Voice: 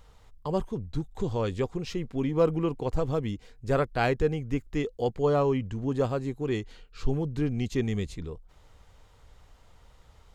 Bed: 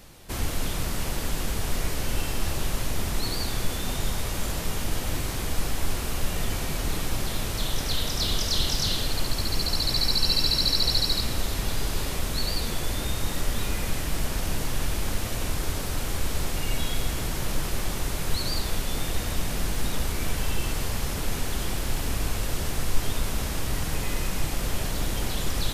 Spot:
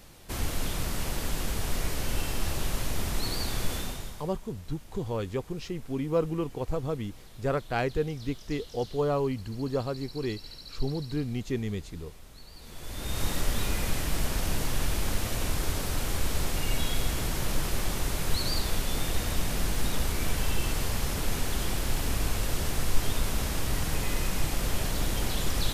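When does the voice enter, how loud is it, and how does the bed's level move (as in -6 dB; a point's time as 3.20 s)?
3.75 s, -3.0 dB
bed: 3.78 s -2.5 dB
4.40 s -22.5 dB
12.51 s -22.5 dB
13.21 s -1 dB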